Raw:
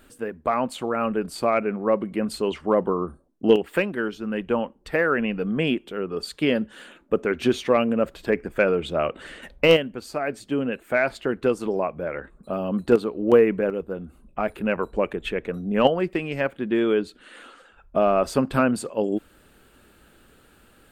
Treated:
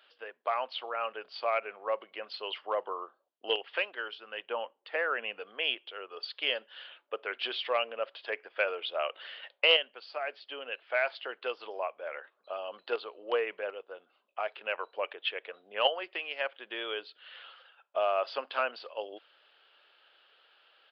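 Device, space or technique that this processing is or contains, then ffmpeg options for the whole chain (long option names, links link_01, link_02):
musical greeting card: -filter_complex "[0:a]asettb=1/sr,asplit=3[link_01][link_02][link_03];[link_01]atrim=end=4.464[link_04];[link_02]atrim=start=4.46:end=5.4,asetpts=PTS-STARTPTS,afade=type=in:duration=0.004:curve=qsin,afade=type=out:start_time=0.936:duration=0.004:curve=qsin,aemphasis=mode=reproduction:type=bsi[link_05];[link_03]atrim=start=5.396[link_06];[link_04][link_05]acrossfade=duration=0.004:curve1=hsin:curve2=qsin[link_07];[link_07][link_06]acrossfade=duration=0.004:curve1=qsin:curve2=hsin,aresample=11025,aresample=44100,highpass=frequency=570:width=0.5412,highpass=frequency=570:width=1.3066,equalizer=frequency=3100:width_type=o:width=0.48:gain=10.5,volume=-7dB"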